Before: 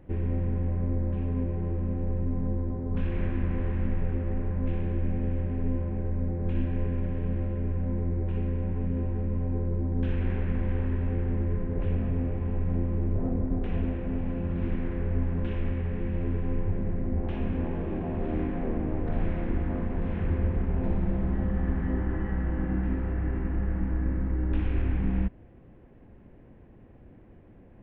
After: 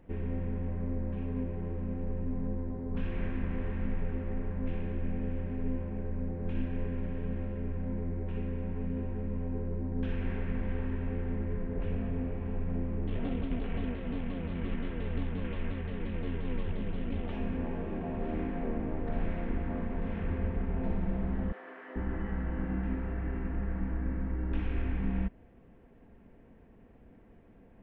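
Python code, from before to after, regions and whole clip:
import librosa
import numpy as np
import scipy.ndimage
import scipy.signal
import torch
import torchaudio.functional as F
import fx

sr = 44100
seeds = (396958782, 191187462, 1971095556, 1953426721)

y = fx.chain(x, sr, fx.cvsd(bps=16000),
    fx.vibrato_shape(shape='saw_down', rate_hz=5.7, depth_cents=160.0), at=(13.07, 17.31))
y = fx.chain(y, sr, fx.bessel_highpass(hz=570.0, order=8),
    fx.notch(hz=840.0, q=8.1), at=(21.52, 21.96))
y = fx.low_shelf(y, sr, hz=440.0, db=-4.0)
y = y + 0.34 * np.pad(y, (int(4.4 * sr / 1000.0), 0))[:len(y)]
y = F.gain(torch.from_numpy(y), -2.0).numpy()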